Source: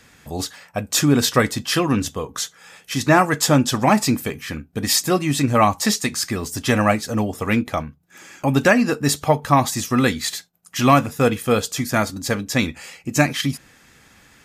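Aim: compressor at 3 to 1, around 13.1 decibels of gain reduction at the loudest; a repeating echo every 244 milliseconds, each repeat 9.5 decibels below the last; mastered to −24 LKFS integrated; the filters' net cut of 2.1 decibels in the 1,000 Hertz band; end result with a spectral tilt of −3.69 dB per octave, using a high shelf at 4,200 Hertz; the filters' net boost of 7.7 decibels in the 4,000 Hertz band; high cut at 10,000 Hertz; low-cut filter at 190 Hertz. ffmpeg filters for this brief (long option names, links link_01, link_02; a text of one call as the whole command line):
ffmpeg -i in.wav -af "highpass=190,lowpass=10000,equalizer=frequency=1000:width_type=o:gain=-3.5,equalizer=frequency=4000:width_type=o:gain=5.5,highshelf=frequency=4200:gain=7,acompressor=threshold=-27dB:ratio=3,aecho=1:1:244|488|732|976:0.335|0.111|0.0365|0.012,volume=3.5dB" out.wav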